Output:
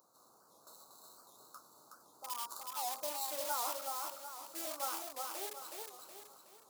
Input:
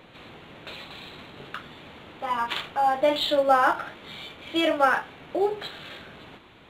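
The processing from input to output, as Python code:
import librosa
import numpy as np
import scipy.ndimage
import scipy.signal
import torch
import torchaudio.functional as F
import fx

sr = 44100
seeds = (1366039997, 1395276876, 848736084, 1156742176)

p1 = scipy.signal.medfilt(x, 3)
p2 = scipy.signal.sosfilt(scipy.signal.ellip(3, 1.0, 40, [1200.0, 5000.0], 'bandstop', fs=sr, output='sos'), p1)
p3 = (np.mod(10.0 ** (25.0 / 20.0) * p2 + 1.0, 2.0) - 1.0) / 10.0 ** (25.0 / 20.0)
p4 = p2 + (p3 * librosa.db_to_amplitude(-11.0))
p5 = np.diff(p4, prepend=0.0)
p6 = p5 + fx.echo_feedback(p5, sr, ms=370, feedback_pct=42, wet_db=-3.5, dry=0)
y = fx.record_warp(p6, sr, rpm=78.0, depth_cents=160.0)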